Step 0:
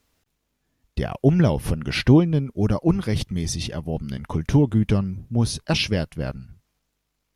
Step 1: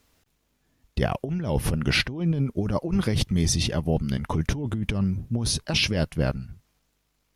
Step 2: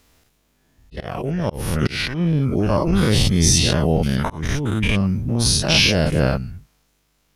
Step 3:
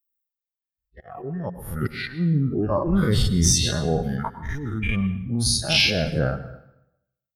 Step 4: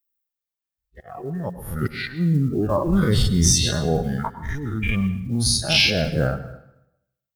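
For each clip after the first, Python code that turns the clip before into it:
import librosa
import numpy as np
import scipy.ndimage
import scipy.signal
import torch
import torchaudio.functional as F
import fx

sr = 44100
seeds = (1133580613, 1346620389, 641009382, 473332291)

y1 = fx.over_compress(x, sr, threshold_db=-24.0, ratio=-1.0)
y2 = fx.spec_dilate(y1, sr, span_ms=120)
y2 = fx.auto_swell(y2, sr, attack_ms=340.0)
y2 = y2 * librosa.db_to_amplitude(2.5)
y3 = fx.bin_expand(y2, sr, power=2.0)
y3 = np.clip(y3, -10.0 ** (-9.0 / 20.0), 10.0 ** (-9.0 / 20.0))
y3 = fx.rev_plate(y3, sr, seeds[0], rt60_s=0.84, hf_ratio=0.85, predelay_ms=90, drr_db=12.5)
y4 = fx.block_float(y3, sr, bits=7)
y4 = y4 * librosa.db_to_amplitude(1.5)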